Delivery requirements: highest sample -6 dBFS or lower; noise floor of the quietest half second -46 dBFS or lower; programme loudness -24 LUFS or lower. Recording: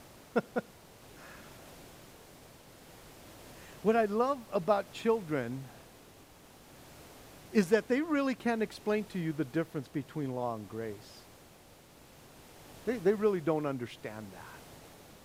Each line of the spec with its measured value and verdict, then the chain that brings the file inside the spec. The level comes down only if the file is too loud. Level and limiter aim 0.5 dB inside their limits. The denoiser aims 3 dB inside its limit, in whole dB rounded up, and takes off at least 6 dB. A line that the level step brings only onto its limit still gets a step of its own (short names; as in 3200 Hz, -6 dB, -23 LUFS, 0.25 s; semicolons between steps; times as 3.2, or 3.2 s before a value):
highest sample -12.5 dBFS: OK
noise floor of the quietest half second -57 dBFS: OK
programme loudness -33.0 LUFS: OK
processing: none